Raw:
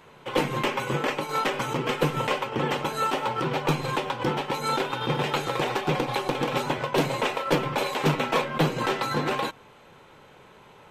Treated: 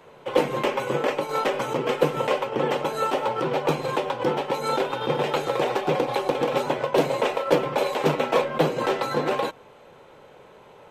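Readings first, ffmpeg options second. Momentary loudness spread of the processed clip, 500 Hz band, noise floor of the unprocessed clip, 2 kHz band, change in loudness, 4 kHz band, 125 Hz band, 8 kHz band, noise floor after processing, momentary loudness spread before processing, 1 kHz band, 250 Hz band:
3 LU, +5.5 dB, -52 dBFS, -1.5 dB, +2.0 dB, -2.0 dB, -3.5 dB, -2.0 dB, -50 dBFS, 3 LU, +1.0 dB, 0.0 dB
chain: -filter_complex "[0:a]equalizer=f=540:t=o:w=1.2:g=8.5,acrossover=split=120[s0][s1];[s0]acompressor=threshold=0.00355:ratio=6[s2];[s2][s1]amix=inputs=2:normalize=0,volume=0.794"

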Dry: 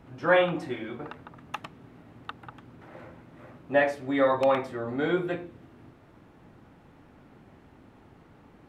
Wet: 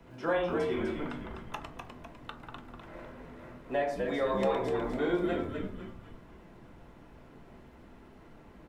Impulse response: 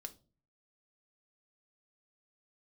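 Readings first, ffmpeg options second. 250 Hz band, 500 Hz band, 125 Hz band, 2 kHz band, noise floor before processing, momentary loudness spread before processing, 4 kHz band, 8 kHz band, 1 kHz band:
-2.5 dB, -4.5 dB, -2.5 dB, -8.5 dB, -56 dBFS, 21 LU, -5.0 dB, no reading, -5.5 dB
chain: -filter_complex "[0:a]acrossover=split=110[s0][s1];[s0]acrusher=bits=3:mode=log:mix=0:aa=0.000001[s2];[s2][s1]amix=inputs=2:normalize=0,acrossover=split=140|1200|2800[s3][s4][s5][s6];[s3]acompressor=threshold=0.00158:ratio=4[s7];[s4]acompressor=threshold=0.0501:ratio=4[s8];[s5]acompressor=threshold=0.00501:ratio=4[s9];[s6]acompressor=threshold=0.00447:ratio=4[s10];[s7][s8][s9][s10]amix=inputs=4:normalize=0,bandreject=f=52.93:t=h:w=4,bandreject=f=105.86:t=h:w=4,bandreject=f=158.79:t=h:w=4,bandreject=f=211.72:t=h:w=4,bandreject=f=264.65:t=h:w=4,bandreject=f=317.58:t=h:w=4,bandreject=f=370.51:t=h:w=4,bandreject=f=423.44:t=h:w=4,bandreject=f=476.37:t=h:w=4,bandreject=f=529.3:t=h:w=4,bandreject=f=582.23:t=h:w=4,bandreject=f=635.16:t=h:w=4,bandreject=f=688.09:t=h:w=4,bandreject=f=741.02:t=h:w=4,bandreject=f=793.95:t=h:w=4,bandreject=f=846.88:t=h:w=4,bandreject=f=899.81:t=h:w=4,bandreject=f=952.74:t=h:w=4,bandreject=f=1005.67:t=h:w=4,bandreject=f=1058.6:t=h:w=4,bandreject=f=1111.53:t=h:w=4,bandreject=f=1164.46:t=h:w=4,bandreject=f=1217.39:t=h:w=4,bandreject=f=1270.32:t=h:w=4,bandreject=f=1323.25:t=h:w=4,bandreject=f=1376.18:t=h:w=4,bandreject=f=1429.11:t=h:w=4,bandreject=f=1482.04:t=h:w=4,bandreject=f=1534.97:t=h:w=4,bandreject=f=1587.9:t=h:w=4,bandreject=f=1640.83:t=h:w=4,bandreject=f=1693.76:t=h:w=4,bandreject=f=1746.69:t=h:w=4,bandreject=f=1799.62:t=h:w=4,bandreject=f=1852.55:t=h:w=4,asplit=7[s11][s12][s13][s14][s15][s16][s17];[s12]adelay=251,afreqshift=-81,volume=0.562[s18];[s13]adelay=502,afreqshift=-162,volume=0.254[s19];[s14]adelay=753,afreqshift=-243,volume=0.114[s20];[s15]adelay=1004,afreqshift=-324,volume=0.0513[s21];[s16]adelay=1255,afreqshift=-405,volume=0.0232[s22];[s17]adelay=1506,afreqshift=-486,volume=0.0104[s23];[s11][s18][s19][s20][s21][s22][s23]amix=inputs=7:normalize=0[s24];[1:a]atrim=start_sample=2205,asetrate=61740,aresample=44100[s25];[s24][s25]afir=irnorm=-1:irlink=0,volume=2.37"

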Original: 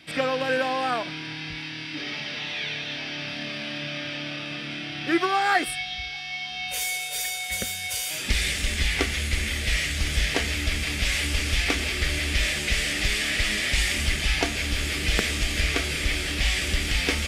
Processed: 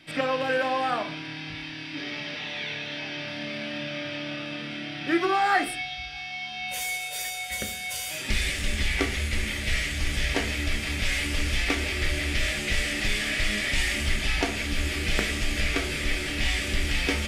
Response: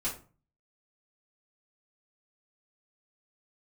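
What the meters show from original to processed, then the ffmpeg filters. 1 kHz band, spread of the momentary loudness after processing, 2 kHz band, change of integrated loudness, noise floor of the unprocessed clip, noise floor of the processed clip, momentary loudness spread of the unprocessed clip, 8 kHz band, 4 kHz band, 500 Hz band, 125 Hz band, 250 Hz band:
0.0 dB, 8 LU, -1.5 dB, -2.0 dB, -35 dBFS, -37 dBFS, 8 LU, -4.0 dB, -3.5 dB, -0.5 dB, -2.0 dB, 0.0 dB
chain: -filter_complex "[0:a]asplit=2[s0][s1];[1:a]atrim=start_sample=2205,asetrate=37485,aresample=44100,lowpass=3300[s2];[s1][s2]afir=irnorm=-1:irlink=0,volume=0.422[s3];[s0][s3]amix=inputs=2:normalize=0,volume=0.631"

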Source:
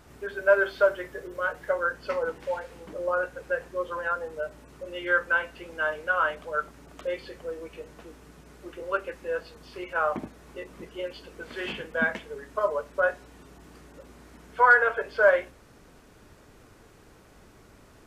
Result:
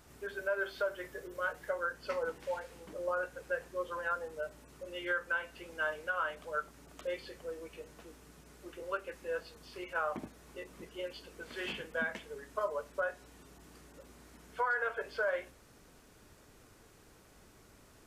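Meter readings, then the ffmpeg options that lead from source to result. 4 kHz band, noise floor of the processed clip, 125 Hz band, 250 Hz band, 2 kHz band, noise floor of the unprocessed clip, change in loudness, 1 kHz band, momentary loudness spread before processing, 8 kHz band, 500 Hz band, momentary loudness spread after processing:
-4.5 dB, -61 dBFS, -7.5 dB, -8.0 dB, -10.5 dB, -55 dBFS, -10.5 dB, -10.5 dB, 21 LU, no reading, -10.0 dB, 19 LU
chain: -af "highshelf=f=4000:g=7.5,alimiter=limit=0.141:level=0:latency=1:release=206,volume=0.447"

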